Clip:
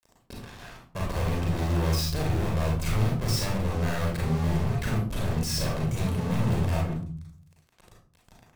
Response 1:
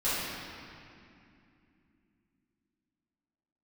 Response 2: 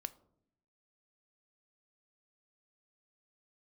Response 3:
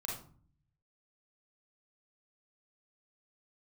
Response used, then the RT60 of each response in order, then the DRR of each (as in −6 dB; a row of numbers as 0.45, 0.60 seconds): 3; 2.6, 0.70, 0.45 seconds; −13.5, 11.5, −3.0 decibels